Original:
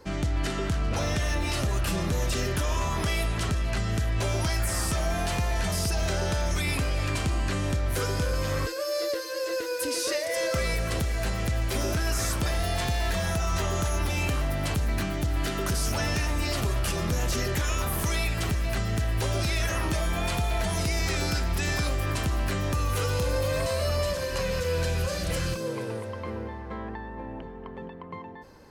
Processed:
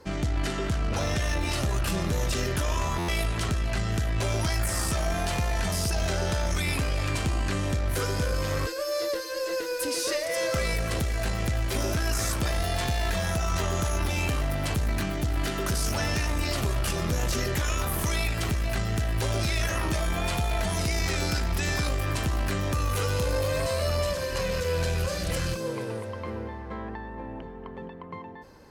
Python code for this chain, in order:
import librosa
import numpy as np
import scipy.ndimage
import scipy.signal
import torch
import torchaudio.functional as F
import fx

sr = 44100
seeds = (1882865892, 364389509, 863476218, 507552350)

y = fx.cheby_harmonics(x, sr, harmonics=(2,), levels_db=(-17,), full_scale_db=-19.5)
y = fx.buffer_glitch(y, sr, at_s=(2.98,), block=512, repeats=8)